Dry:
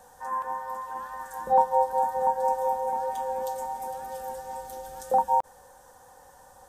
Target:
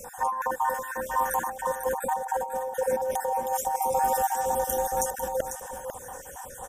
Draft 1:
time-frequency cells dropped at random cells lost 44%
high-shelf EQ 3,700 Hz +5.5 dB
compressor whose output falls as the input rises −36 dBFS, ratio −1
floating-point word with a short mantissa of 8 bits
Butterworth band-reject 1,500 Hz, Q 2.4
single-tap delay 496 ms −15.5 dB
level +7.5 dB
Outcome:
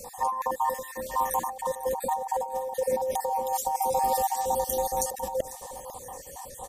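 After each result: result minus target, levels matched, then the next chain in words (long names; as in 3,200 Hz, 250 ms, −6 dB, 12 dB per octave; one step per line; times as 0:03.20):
2,000 Hz band −7.0 dB; echo-to-direct −7.5 dB
time-frequency cells dropped at random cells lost 44%
high-shelf EQ 3,700 Hz +5.5 dB
compressor whose output falls as the input rises −36 dBFS, ratio −1
floating-point word with a short mantissa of 8 bits
Butterworth band-reject 4,300 Hz, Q 2.4
single-tap delay 496 ms −15.5 dB
level +7.5 dB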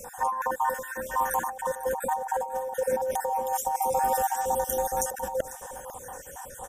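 echo-to-direct −7.5 dB
time-frequency cells dropped at random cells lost 44%
high-shelf EQ 3,700 Hz +5.5 dB
compressor whose output falls as the input rises −36 dBFS, ratio −1
floating-point word with a short mantissa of 8 bits
Butterworth band-reject 4,300 Hz, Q 2.4
single-tap delay 496 ms −8 dB
level +7.5 dB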